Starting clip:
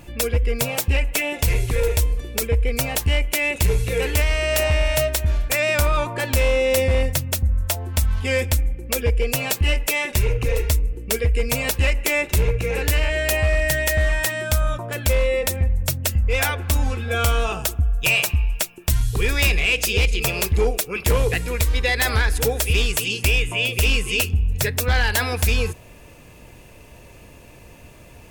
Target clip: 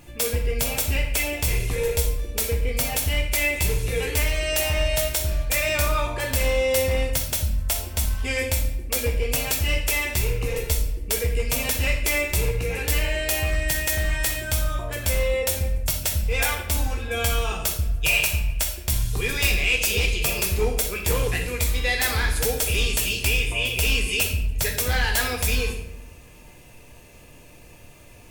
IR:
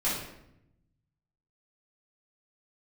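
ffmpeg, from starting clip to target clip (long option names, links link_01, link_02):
-filter_complex "[0:a]asplit=2[link_01][link_02];[1:a]atrim=start_sample=2205,highshelf=frequency=2400:gain=11[link_03];[link_02][link_03]afir=irnorm=-1:irlink=0,volume=-11.5dB[link_04];[link_01][link_04]amix=inputs=2:normalize=0,volume=-7.5dB"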